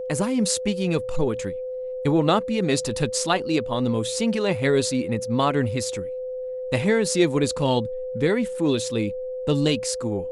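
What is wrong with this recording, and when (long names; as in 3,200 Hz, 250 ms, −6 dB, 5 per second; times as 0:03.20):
whistle 510 Hz −28 dBFS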